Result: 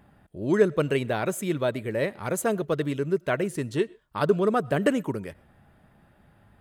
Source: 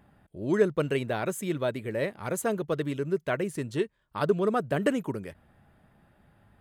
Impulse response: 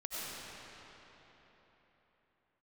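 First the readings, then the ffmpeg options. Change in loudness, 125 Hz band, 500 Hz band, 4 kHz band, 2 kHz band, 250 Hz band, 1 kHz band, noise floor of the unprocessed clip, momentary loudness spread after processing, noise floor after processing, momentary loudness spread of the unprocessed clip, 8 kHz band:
+3.0 dB, +3.0 dB, +3.0 dB, +3.0 dB, +3.0 dB, +3.0 dB, +3.0 dB, -70 dBFS, 7 LU, -60 dBFS, 7 LU, +3.0 dB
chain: -filter_complex "[0:a]asplit=2[a][b];[1:a]atrim=start_sample=2205,atrim=end_sample=6174[c];[b][c]afir=irnorm=-1:irlink=0,volume=-20.5dB[d];[a][d]amix=inputs=2:normalize=0,volume=2.5dB"

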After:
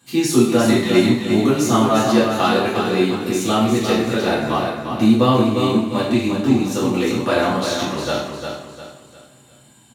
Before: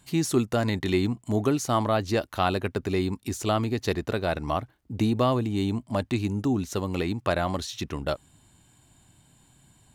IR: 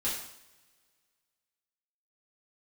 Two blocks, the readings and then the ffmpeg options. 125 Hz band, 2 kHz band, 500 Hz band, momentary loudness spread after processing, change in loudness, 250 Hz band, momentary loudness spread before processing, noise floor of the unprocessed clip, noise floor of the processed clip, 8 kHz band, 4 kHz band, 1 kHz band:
+4.5 dB, +9.5 dB, +9.5 dB, 8 LU, +9.5 dB, +11.0 dB, 6 LU, -61 dBFS, -49 dBFS, +9.5 dB, +10.5 dB, +8.5 dB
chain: -filter_complex "[0:a]highpass=150,aecho=1:1:352|704|1056|1408:0.501|0.185|0.0686|0.0254[a];[1:a]atrim=start_sample=2205[b];[a][b]afir=irnorm=-1:irlink=0,volume=3dB"

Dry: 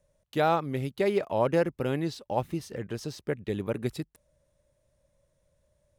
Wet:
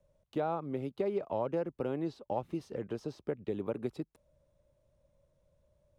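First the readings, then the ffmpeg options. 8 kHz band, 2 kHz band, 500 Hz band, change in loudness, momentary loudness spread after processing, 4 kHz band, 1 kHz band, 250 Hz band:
under -15 dB, -14.5 dB, -6.5 dB, -7.0 dB, 6 LU, -14.5 dB, -8.5 dB, -5.5 dB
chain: -filter_complex "[0:a]lowpass=f=2.3k:p=1,equalizer=f=1.8k:w=2.7:g=-6.5,acrossover=split=220|1600[a][b][c];[a]acompressor=threshold=-48dB:ratio=4[d];[b]acompressor=threshold=-31dB:ratio=4[e];[c]acompressor=threshold=-58dB:ratio=4[f];[d][e][f]amix=inputs=3:normalize=0"

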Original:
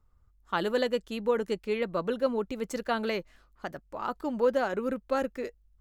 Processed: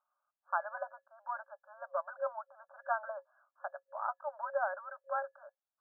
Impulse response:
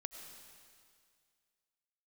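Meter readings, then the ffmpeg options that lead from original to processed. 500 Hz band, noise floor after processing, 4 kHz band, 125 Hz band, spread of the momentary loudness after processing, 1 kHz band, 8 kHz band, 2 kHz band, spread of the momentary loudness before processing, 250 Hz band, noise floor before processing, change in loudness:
-12.0 dB, under -85 dBFS, under -40 dB, under -40 dB, 13 LU, -2.5 dB, under -30 dB, -5.0 dB, 12 LU, under -40 dB, -64 dBFS, -9.0 dB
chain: -af "afftfilt=real='re*between(b*sr/4096,540,1700)':imag='im*between(b*sr/4096,540,1700)':win_size=4096:overlap=0.75,volume=-2.5dB"

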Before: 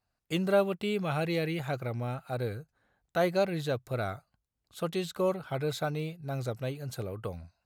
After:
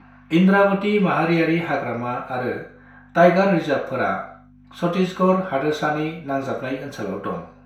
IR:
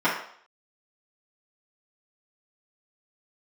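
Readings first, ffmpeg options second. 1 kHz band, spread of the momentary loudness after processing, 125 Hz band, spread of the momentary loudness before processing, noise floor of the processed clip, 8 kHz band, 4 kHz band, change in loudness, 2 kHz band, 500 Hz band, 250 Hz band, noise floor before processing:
+14.5 dB, 13 LU, +8.5 dB, 11 LU, -49 dBFS, n/a, +6.5 dB, +11.5 dB, +14.5 dB, +10.5 dB, +14.0 dB, -84 dBFS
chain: -filter_complex "[0:a]acrossover=split=640|3100[a][b][c];[b]acompressor=mode=upward:threshold=-47dB:ratio=2.5[d];[a][d][c]amix=inputs=3:normalize=0,aeval=exprs='val(0)+0.00447*(sin(2*PI*50*n/s)+sin(2*PI*2*50*n/s)/2+sin(2*PI*3*50*n/s)/3+sin(2*PI*4*50*n/s)/4+sin(2*PI*5*50*n/s)/5)':c=same[e];[1:a]atrim=start_sample=2205,asetrate=48510,aresample=44100[f];[e][f]afir=irnorm=-1:irlink=0,volume=-3dB"

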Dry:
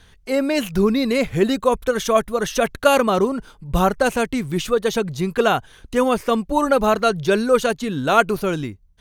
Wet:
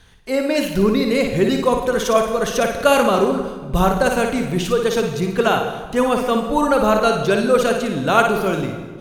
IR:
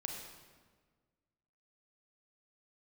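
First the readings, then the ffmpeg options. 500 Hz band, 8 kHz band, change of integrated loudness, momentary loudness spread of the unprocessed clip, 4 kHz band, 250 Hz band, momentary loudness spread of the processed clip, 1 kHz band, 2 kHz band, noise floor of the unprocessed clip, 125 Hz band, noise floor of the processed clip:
+2.0 dB, +1.5 dB, +1.5 dB, 7 LU, +1.5 dB, +1.5 dB, 6 LU, +1.5 dB, +1.5 dB, -52 dBFS, +2.5 dB, -34 dBFS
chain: -filter_complex "[0:a]asplit=2[a][b];[1:a]atrim=start_sample=2205,adelay=57[c];[b][c]afir=irnorm=-1:irlink=0,volume=-3dB[d];[a][d]amix=inputs=2:normalize=0"

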